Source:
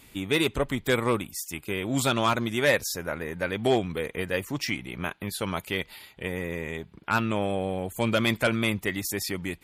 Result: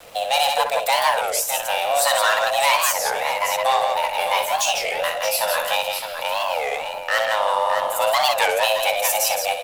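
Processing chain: high shelf 4500 Hz +7 dB; in parallel at -0.5 dB: compressor, threshold -33 dBFS, peak gain reduction 15 dB; on the sum: soft clip -18 dBFS, distortion -14 dB; frequency shift +420 Hz; backlash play -36.5 dBFS; vibrato 2.1 Hz 50 cents; 4.17–5.76 doubler 17 ms -6 dB; tapped delay 61/166/614 ms -7/-5.5/-8 dB; on a send at -21 dB: reverb, pre-delay 3 ms; on the sum: record warp 33 1/3 rpm, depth 250 cents; gain +4.5 dB

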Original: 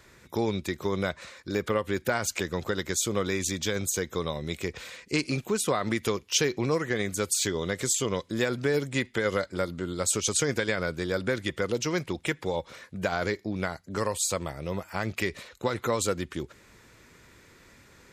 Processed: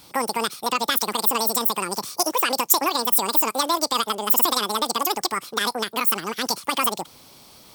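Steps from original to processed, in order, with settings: high shelf 2400 Hz +8 dB; speed mistake 33 rpm record played at 78 rpm; gain +4 dB

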